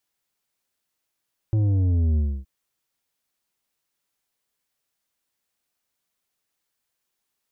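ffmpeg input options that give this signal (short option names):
-f lavfi -i "aevalsrc='0.119*clip((0.92-t)/0.28,0,1)*tanh(2.51*sin(2*PI*110*0.92/log(65/110)*(exp(log(65/110)*t/0.92)-1)))/tanh(2.51)':d=0.92:s=44100"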